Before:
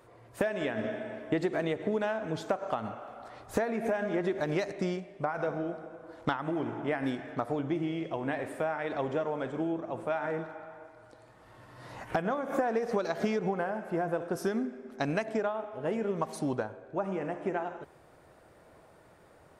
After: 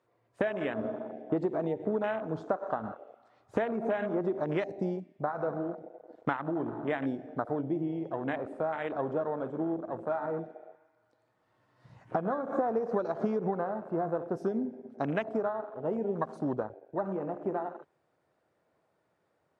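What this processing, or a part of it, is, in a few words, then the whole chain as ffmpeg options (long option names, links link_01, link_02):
over-cleaned archive recording: -af "highpass=110,lowpass=7500,afwtdn=0.0158"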